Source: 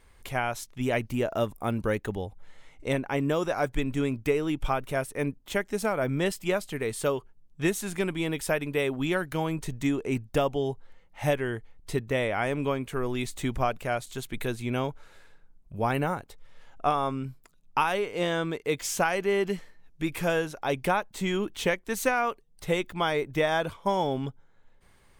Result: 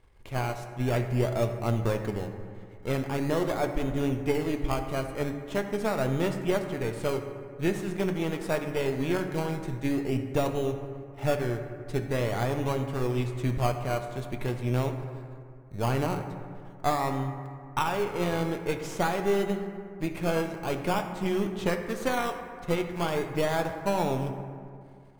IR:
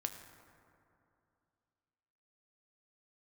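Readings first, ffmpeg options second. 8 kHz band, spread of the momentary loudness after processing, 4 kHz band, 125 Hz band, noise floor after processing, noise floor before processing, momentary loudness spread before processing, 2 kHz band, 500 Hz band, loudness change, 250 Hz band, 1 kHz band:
−5.0 dB, 8 LU, −3.0 dB, +3.5 dB, −46 dBFS, −58 dBFS, 7 LU, −4.5 dB, −0.5 dB, −0.5 dB, +0.5 dB, −1.5 dB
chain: -filter_complex "[0:a]aeval=exprs='if(lt(val(0),0),0.447*val(0),val(0))':channel_layout=same,lowpass=frequency=3400:poles=1,asplit=2[link_01][link_02];[link_02]acrusher=samples=19:mix=1:aa=0.000001:lfo=1:lforange=11.4:lforate=0.45,volume=-3.5dB[link_03];[link_01][link_03]amix=inputs=2:normalize=0[link_04];[1:a]atrim=start_sample=2205,asetrate=52920,aresample=44100[link_05];[link_04][link_05]afir=irnorm=-1:irlink=0"

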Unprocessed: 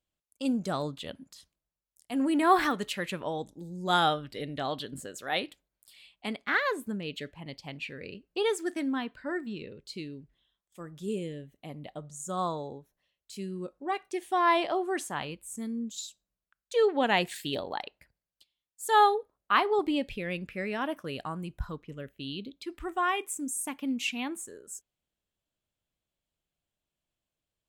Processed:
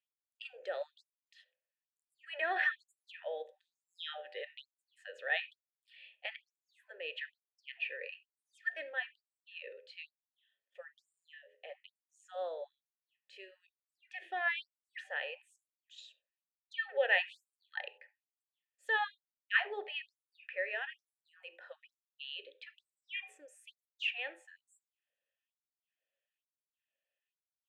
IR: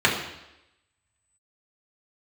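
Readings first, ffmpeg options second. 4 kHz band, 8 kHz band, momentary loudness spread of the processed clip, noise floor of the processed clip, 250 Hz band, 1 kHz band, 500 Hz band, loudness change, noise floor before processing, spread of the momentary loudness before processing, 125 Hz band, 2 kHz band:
−8.0 dB, below −25 dB, 22 LU, below −85 dBFS, below −30 dB, −16.5 dB, −11.5 dB, −7.5 dB, below −85 dBFS, 18 LU, below −40 dB, −1.5 dB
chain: -filter_complex "[0:a]asplit=3[link_01][link_02][link_03];[link_01]bandpass=frequency=530:width_type=q:width=8,volume=0dB[link_04];[link_02]bandpass=frequency=1840:width_type=q:width=8,volume=-6dB[link_05];[link_03]bandpass=frequency=2480:width_type=q:width=8,volume=-9dB[link_06];[link_04][link_05][link_06]amix=inputs=3:normalize=0,acrossover=split=470 3200:gain=0.0891 1 0.158[link_07][link_08][link_09];[link_07][link_08][link_09]amix=inputs=3:normalize=0,bandreject=frequency=85.06:width_type=h:width=4,bandreject=frequency=170.12:width_type=h:width=4,bandreject=frequency=255.18:width_type=h:width=4,bandreject=frequency=340.24:width_type=h:width=4,bandreject=frequency=425.3:width_type=h:width=4,bandreject=frequency=510.36:width_type=h:width=4,bandreject=frequency=595.42:width_type=h:width=4,bandreject=frequency=680.48:width_type=h:width=4,bandreject=frequency=765.54:width_type=h:width=4,bandreject=frequency=850.6:width_type=h:width=4,bandreject=frequency=935.66:width_type=h:width=4,bandreject=frequency=1020.72:width_type=h:width=4,bandreject=frequency=1105.78:width_type=h:width=4,asplit=2[link_10][link_11];[link_11]acompressor=threshold=-52dB:ratio=6,volume=-1dB[link_12];[link_10][link_12]amix=inputs=2:normalize=0,tiltshelf=frequency=640:gain=-7,asplit=2[link_13][link_14];[1:a]atrim=start_sample=2205,atrim=end_sample=4410[link_15];[link_14][link_15]afir=irnorm=-1:irlink=0,volume=-29dB[link_16];[link_13][link_16]amix=inputs=2:normalize=0,afftfilt=real='re*gte(b*sr/1024,260*pow(7200/260,0.5+0.5*sin(2*PI*1.1*pts/sr)))':imag='im*gte(b*sr/1024,260*pow(7200/260,0.5+0.5*sin(2*PI*1.1*pts/sr)))':win_size=1024:overlap=0.75,volume=4dB"

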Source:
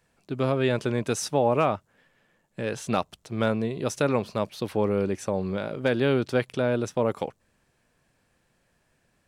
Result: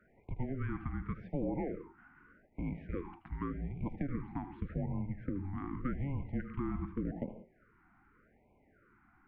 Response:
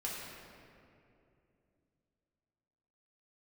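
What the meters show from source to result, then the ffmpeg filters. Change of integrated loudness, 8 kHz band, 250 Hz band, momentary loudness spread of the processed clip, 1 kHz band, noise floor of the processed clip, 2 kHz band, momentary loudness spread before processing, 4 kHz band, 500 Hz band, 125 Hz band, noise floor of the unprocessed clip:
−13.0 dB, below −40 dB, −9.5 dB, 6 LU, −17.0 dB, −68 dBFS, −18.0 dB, 10 LU, below −30 dB, −20.5 dB, −8.0 dB, −70 dBFS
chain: -filter_complex "[0:a]acompressor=threshold=-40dB:ratio=5,highpass=frequency=250:width_type=q:width=0.5412,highpass=frequency=250:width_type=q:width=1.307,lowpass=frequency=2200:width_type=q:width=0.5176,lowpass=frequency=2200:width_type=q:width=0.7071,lowpass=frequency=2200:width_type=q:width=1.932,afreqshift=-280,bandreject=frequency=380.2:width_type=h:width=4,bandreject=frequency=760.4:width_type=h:width=4,bandreject=frequency=1140.6:width_type=h:width=4,bandreject=frequency=1520.8:width_type=h:width=4,bandreject=frequency=1901:width_type=h:width=4,bandreject=frequency=2281.2:width_type=h:width=4,bandreject=frequency=2661.4:width_type=h:width=4,bandreject=frequency=3041.6:width_type=h:width=4,bandreject=frequency=3421.8:width_type=h:width=4,bandreject=frequency=3802:width_type=h:width=4,bandreject=frequency=4182.2:width_type=h:width=4,bandreject=frequency=4562.4:width_type=h:width=4,bandreject=frequency=4942.6:width_type=h:width=4,bandreject=frequency=5322.8:width_type=h:width=4,bandreject=frequency=5703:width_type=h:width=4,bandreject=frequency=6083.2:width_type=h:width=4,bandreject=frequency=6463.4:width_type=h:width=4,bandreject=frequency=6843.6:width_type=h:width=4,bandreject=frequency=7223.8:width_type=h:width=4,bandreject=frequency=7604:width_type=h:width=4,asplit=2[link_01][link_02];[1:a]atrim=start_sample=2205,afade=type=out:start_time=0.17:duration=0.01,atrim=end_sample=7938,adelay=77[link_03];[link_02][link_03]afir=irnorm=-1:irlink=0,volume=-8.5dB[link_04];[link_01][link_04]amix=inputs=2:normalize=0,afftfilt=real='re*(1-between(b*sr/1024,480*pow(1500/480,0.5+0.5*sin(2*PI*0.85*pts/sr))/1.41,480*pow(1500/480,0.5+0.5*sin(2*PI*0.85*pts/sr))*1.41))':imag='im*(1-between(b*sr/1024,480*pow(1500/480,0.5+0.5*sin(2*PI*0.85*pts/sr))/1.41,480*pow(1500/480,0.5+0.5*sin(2*PI*0.85*pts/sr))*1.41))':win_size=1024:overlap=0.75,volume=6dB"

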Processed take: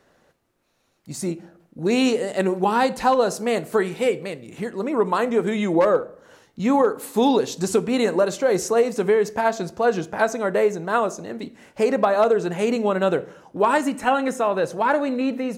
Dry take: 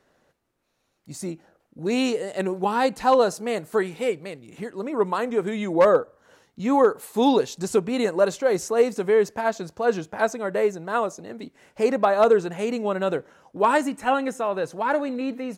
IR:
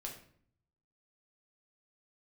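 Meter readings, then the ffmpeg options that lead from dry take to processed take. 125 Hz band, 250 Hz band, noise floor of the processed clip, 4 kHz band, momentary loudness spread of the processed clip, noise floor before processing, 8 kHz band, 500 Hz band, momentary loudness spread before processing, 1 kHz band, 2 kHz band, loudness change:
+4.5 dB, +3.0 dB, −65 dBFS, +3.0 dB, 10 LU, −72 dBFS, +4.0 dB, +1.5 dB, 15 LU, +2.0 dB, +2.5 dB, +1.5 dB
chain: -filter_complex "[0:a]acompressor=threshold=-19dB:ratio=6,asplit=2[link_01][link_02];[1:a]atrim=start_sample=2205[link_03];[link_02][link_03]afir=irnorm=-1:irlink=0,volume=-8dB[link_04];[link_01][link_04]amix=inputs=2:normalize=0,volume=3dB"

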